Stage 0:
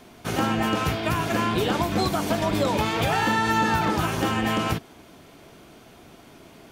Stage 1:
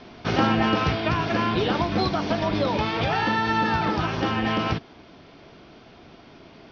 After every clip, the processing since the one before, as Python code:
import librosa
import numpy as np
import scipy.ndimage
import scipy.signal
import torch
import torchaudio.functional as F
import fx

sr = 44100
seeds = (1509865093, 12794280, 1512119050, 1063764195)

y = scipy.signal.sosfilt(scipy.signal.butter(12, 5600.0, 'lowpass', fs=sr, output='sos'), x)
y = fx.rider(y, sr, range_db=10, speed_s=2.0)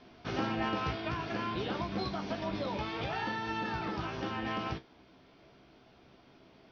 y = fx.comb_fb(x, sr, f0_hz=65.0, decay_s=0.17, harmonics='all', damping=0.0, mix_pct=80)
y = y * librosa.db_to_amplitude(-7.5)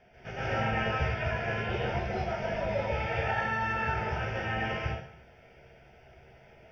y = fx.fixed_phaser(x, sr, hz=1100.0, stages=6)
y = fx.rev_plate(y, sr, seeds[0], rt60_s=0.67, hf_ratio=0.9, predelay_ms=120, drr_db=-8.0)